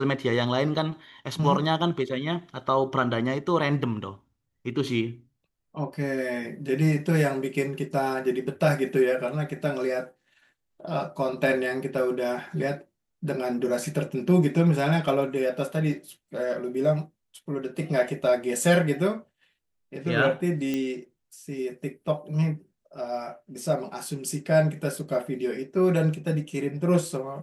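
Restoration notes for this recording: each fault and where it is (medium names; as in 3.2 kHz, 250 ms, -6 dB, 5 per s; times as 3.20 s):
20.74 s: pop -16 dBFS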